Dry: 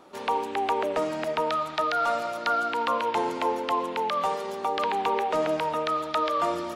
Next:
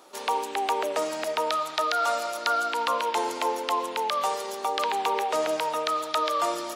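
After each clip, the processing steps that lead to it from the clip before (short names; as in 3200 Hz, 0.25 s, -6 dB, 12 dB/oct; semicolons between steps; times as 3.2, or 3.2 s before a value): tone controls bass -14 dB, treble +11 dB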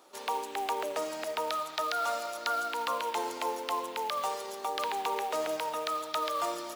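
short-mantissa float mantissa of 2-bit; gain -6 dB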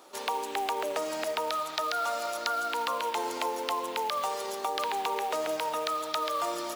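compressor, threshold -32 dBFS, peak gain reduction 5 dB; gain +5 dB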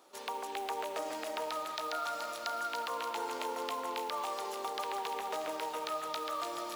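echo with dull and thin repeats by turns 0.145 s, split 1900 Hz, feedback 79%, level -4 dB; gain -8 dB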